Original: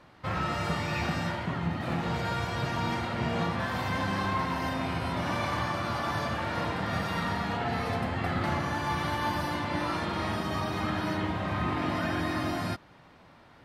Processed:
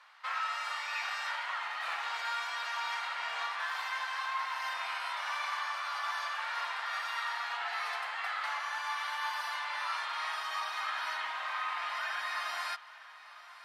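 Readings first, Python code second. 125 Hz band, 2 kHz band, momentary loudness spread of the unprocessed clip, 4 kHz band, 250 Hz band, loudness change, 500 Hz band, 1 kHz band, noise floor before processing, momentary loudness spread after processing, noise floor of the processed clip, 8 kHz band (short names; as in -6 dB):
under -40 dB, 0.0 dB, 2 LU, -0.5 dB, under -40 dB, -4.5 dB, -17.5 dB, -3.5 dB, -55 dBFS, 1 LU, -52 dBFS, -2.0 dB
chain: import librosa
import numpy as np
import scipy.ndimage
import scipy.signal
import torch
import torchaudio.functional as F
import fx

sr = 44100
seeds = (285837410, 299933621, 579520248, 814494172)

y = scipy.signal.sosfilt(scipy.signal.butter(4, 1000.0, 'highpass', fs=sr, output='sos'), x)
y = fx.high_shelf(y, sr, hz=11000.0, db=-9.0)
y = fx.rider(y, sr, range_db=10, speed_s=0.5)
y = fx.echo_feedback(y, sr, ms=904, feedback_pct=55, wet_db=-18.5)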